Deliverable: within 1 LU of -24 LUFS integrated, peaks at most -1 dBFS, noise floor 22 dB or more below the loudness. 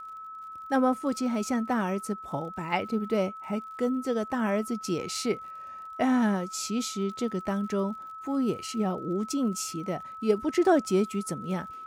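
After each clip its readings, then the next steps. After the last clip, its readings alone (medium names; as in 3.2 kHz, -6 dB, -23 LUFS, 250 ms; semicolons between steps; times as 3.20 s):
tick rate 49 per s; steady tone 1.3 kHz; tone level -39 dBFS; loudness -29.0 LUFS; peak level -11.5 dBFS; loudness target -24.0 LUFS
-> de-click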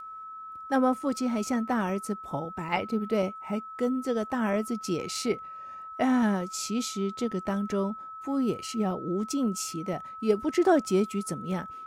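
tick rate 0.17 per s; steady tone 1.3 kHz; tone level -39 dBFS
-> band-stop 1.3 kHz, Q 30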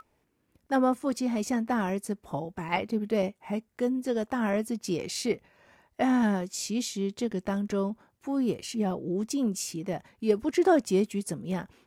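steady tone not found; loudness -29.5 LUFS; peak level -12.0 dBFS; loudness target -24.0 LUFS
-> trim +5.5 dB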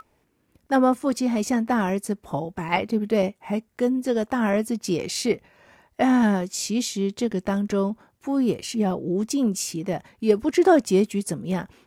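loudness -24.0 LUFS; peak level -6.5 dBFS; noise floor -68 dBFS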